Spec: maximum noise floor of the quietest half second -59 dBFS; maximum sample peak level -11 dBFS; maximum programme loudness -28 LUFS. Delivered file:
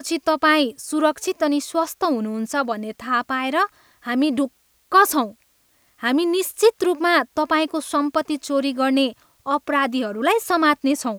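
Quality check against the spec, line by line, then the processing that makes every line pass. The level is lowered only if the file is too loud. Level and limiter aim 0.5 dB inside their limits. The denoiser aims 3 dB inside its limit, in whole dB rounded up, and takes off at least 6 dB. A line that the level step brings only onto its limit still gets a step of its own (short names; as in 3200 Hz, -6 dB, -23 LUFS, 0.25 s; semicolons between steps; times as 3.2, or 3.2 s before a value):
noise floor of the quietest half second -61 dBFS: OK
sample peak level -3.0 dBFS: fail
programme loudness -20.5 LUFS: fail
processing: gain -8 dB; limiter -11.5 dBFS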